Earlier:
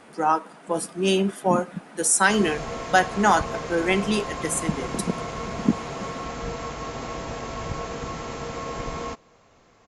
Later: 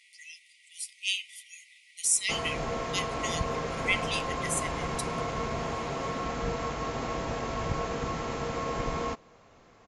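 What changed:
speech: add brick-wall FIR high-pass 1900 Hz; master: add high shelf 6600 Hz -7 dB

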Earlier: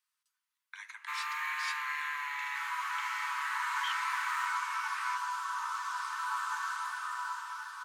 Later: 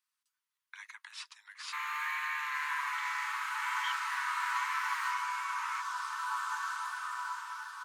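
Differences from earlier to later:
first sound: entry +0.65 s; reverb: off

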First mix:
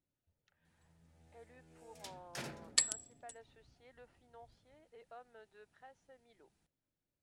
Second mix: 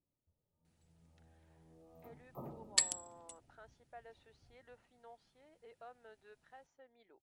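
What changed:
speech: entry +0.70 s; first sound: add brick-wall FIR band-stop 1300–13000 Hz

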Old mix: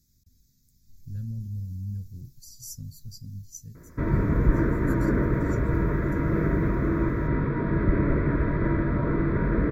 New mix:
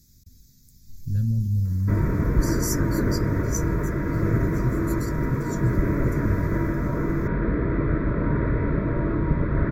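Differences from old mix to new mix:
speech +10.5 dB; background: entry -2.10 s

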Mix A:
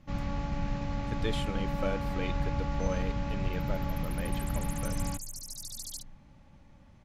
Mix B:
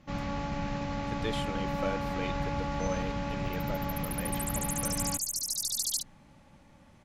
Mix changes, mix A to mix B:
first sound +4.0 dB; second sound +10.5 dB; master: add low shelf 120 Hz -11.5 dB

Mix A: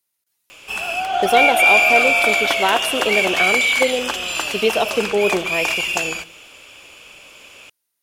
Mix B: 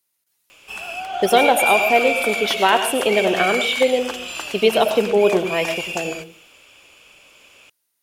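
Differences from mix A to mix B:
speech: send +10.0 dB; background -6.5 dB

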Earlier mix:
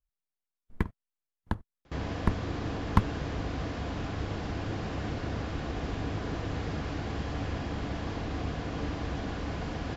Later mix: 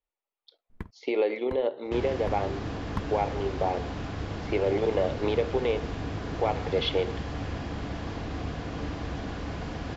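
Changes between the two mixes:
speech: unmuted; first sound -9.5 dB

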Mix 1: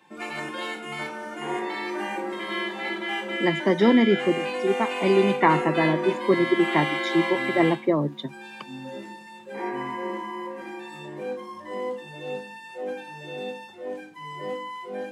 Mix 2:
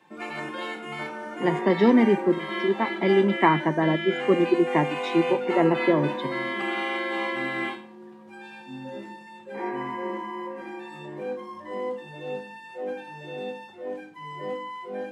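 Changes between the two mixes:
speech: entry -2.00 s; master: add high shelf 3800 Hz -8 dB

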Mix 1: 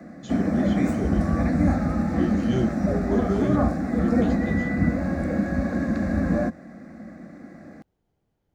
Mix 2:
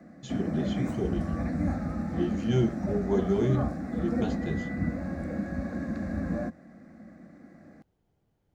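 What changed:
background -9.0 dB; master: add bell 120 Hz +2.5 dB 1.2 oct

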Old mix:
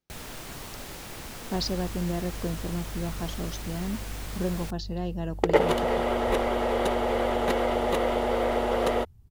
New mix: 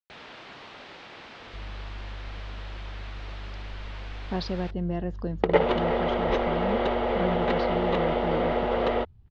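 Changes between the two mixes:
speech: entry +2.80 s; first sound: add HPF 520 Hz 6 dB/oct; master: add LPF 3900 Hz 24 dB/oct

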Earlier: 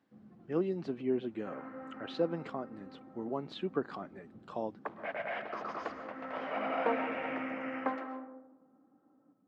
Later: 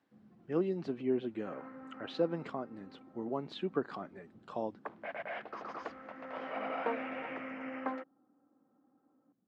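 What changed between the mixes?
first sound -4.0 dB; reverb: off

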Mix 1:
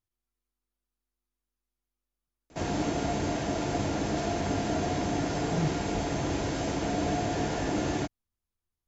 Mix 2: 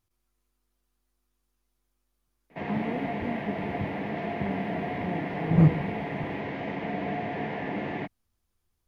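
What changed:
speech +11.5 dB; background: add speaker cabinet 170–2700 Hz, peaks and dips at 190 Hz +5 dB, 320 Hz -8 dB, 600 Hz -3 dB, 1400 Hz -9 dB, 2000 Hz +8 dB

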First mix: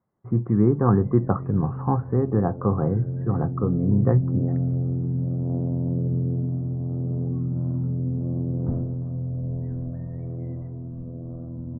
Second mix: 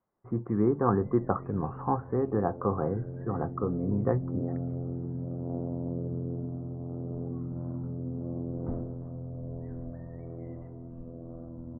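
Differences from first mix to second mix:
speech: add air absorption 260 m; master: add bell 130 Hz -11.5 dB 2 oct

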